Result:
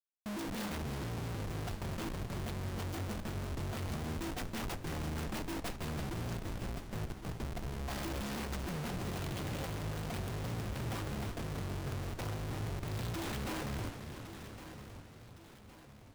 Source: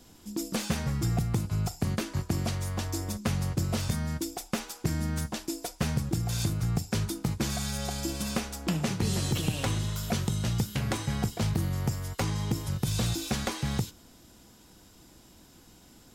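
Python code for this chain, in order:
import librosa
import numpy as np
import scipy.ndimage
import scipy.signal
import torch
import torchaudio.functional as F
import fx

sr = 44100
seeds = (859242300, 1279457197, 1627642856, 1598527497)

p1 = fx.tracing_dist(x, sr, depth_ms=0.24)
p2 = fx.rider(p1, sr, range_db=4, speed_s=0.5)
p3 = fx.ladder_lowpass(p2, sr, hz=820.0, resonance_pct=55, at=(6.37, 7.88))
p4 = fx.schmitt(p3, sr, flips_db=-37.0)
p5 = p4 + fx.echo_feedback(p4, sr, ms=1112, feedback_pct=47, wet_db=-12, dry=0)
p6 = fx.echo_warbled(p5, sr, ms=333, feedback_pct=59, rate_hz=2.8, cents=169, wet_db=-9.5)
y = p6 * 10.0 ** (-7.5 / 20.0)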